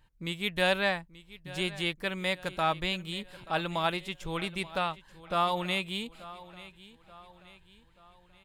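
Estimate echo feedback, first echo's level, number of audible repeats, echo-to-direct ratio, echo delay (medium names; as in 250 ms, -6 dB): 46%, -18.0 dB, 3, -17.0 dB, 882 ms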